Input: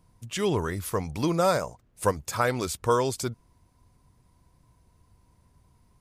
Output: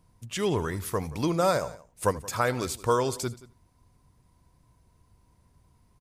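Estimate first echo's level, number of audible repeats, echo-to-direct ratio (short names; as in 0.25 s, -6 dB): -19.5 dB, 2, -16.5 dB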